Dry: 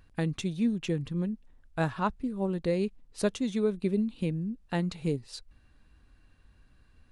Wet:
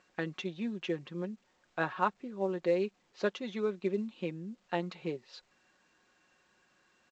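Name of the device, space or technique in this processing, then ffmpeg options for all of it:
telephone: -af "highpass=390,lowpass=3.1k,aecho=1:1:5.5:0.51" -ar 16000 -c:a pcm_alaw

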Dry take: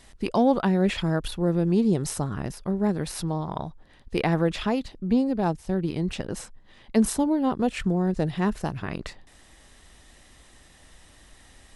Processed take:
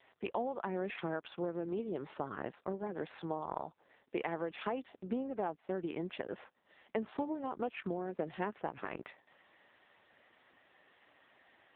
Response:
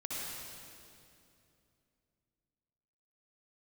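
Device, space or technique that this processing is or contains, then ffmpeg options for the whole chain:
voicemail: -af "highpass=390,lowpass=2.8k,acompressor=threshold=-29dB:ratio=8,volume=-2dB" -ar 8000 -c:a libopencore_amrnb -b:a 5900

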